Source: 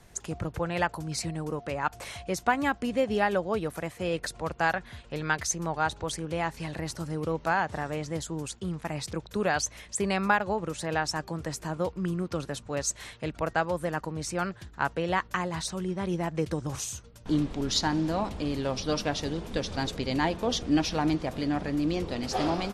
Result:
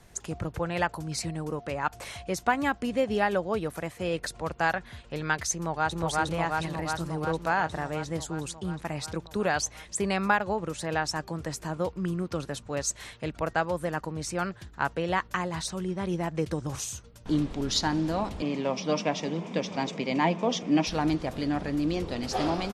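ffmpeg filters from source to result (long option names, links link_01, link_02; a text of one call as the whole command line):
ffmpeg -i in.wav -filter_complex "[0:a]asplit=2[link_01][link_02];[link_02]afade=type=in:start_time=5.56:duration=0.01,afade=type=out:start_time=5.98:duration=0.01,aecho=0:1:360|720|1080|1440|1800|2160|2520|2880|3240|3600|3960|4320:1|0.75|0.5625|0.421875|0.316406|0.237305|0.177979|0.133484|0.100113|0.0750847|0.0563135|0.0422351[link_03];[link_01][link_03]amix=inputs=2:normalize=0,asettb=1/sr,asplit=3[link_04][link_05][link_06];[link_04]atrim=end=18.424[link_07];[link_05]atrim=start=18.42:end=20.87,asetpts=PTS-STARTPTS,afade=type=in:duration=0.004:curve=qsin,afade=type=out:start_time=2.446:duration=0.004:curve=qsin,highpass=frequency=160:width=0.5412,highpass=frequency=160:width=1.3066,equalizer=frequency=180:width_type=q:width=4:gain=9,equalizer=frequency=630:width_type=q:width=4:gain=4,equalizer=frequency=1000:width_type=q:width=4:gain=5,equalizer=frequency=1500:width_type=q:width=4:gain=-6,equalizer=frequency=2300:width_type=q:width=4:gain=7,equalizer=frequency=4200:width_type=q:width=4:gain=-8,lowpass=frequency=7100:width=0.5412,lowpass=frequency=7100:width=1.3066[link_08];[link_06]atrim=start=20.866[link_09];[link_07][link_08]acrossfade=duration=0.004:curve1=hsin:curve2=qsin[link_10];[link_10][link_09]acrossfade=duration=0.004:curve1=qsin:curve2=hsin" out.wav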